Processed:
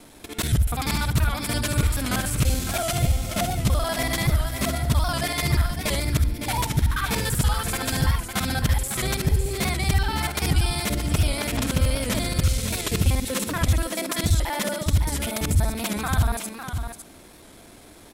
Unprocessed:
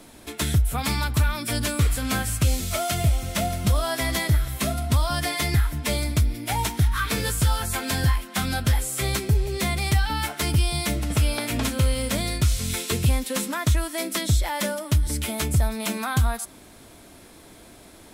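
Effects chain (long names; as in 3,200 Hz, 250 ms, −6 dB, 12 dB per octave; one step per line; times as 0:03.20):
reversed piece by piece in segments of 48 ms
single-tap delay 555 ms −8 dB
wow of a warped record 78 rpm, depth 100 cents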